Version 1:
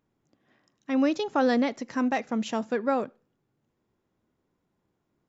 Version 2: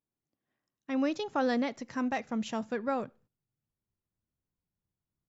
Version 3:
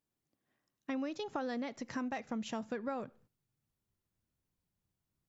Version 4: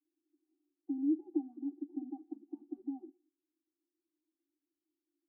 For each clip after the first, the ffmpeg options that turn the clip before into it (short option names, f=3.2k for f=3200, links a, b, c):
-af "agate=range=-14dB:threshold=-57dB:ratio=16:detection=peak,asubboost=boost=5.5:cutoff=140,volume=-4.5dB"
-af "acompressor=threshold=-39dB:ratio=5,volume=3dB"
-af "crystalizer=i=6:c=0,asuperpass=centerf=440:order=20:qfactor=1.1,afftfilt=real='re*eq(mod(floor(b*sr/1024/380),2),0)':imag='im*eq(mod(floor(b*sr/1024/380),2),0)':win_size=1024:overlap=0.75,volume=12dB"